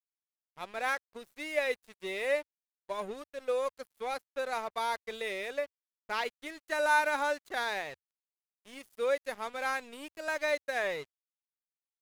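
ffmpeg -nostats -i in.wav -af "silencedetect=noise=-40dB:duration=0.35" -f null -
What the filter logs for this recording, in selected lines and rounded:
silence_start: 0.00
silence_end: 0.58 | silence_duration: 0.58
silence_start: 2.42
silence_end: 2.90 | silence_duration: 0.48
silence_start: 5.65
silence_end: 6.10 | silence_duration: 0.44
silence_start: 7.94
silence_end: 8.67 | silence_duration: 0.74
silence_start: 11.03
silence_end: 12.01 | silence_duration: 0.98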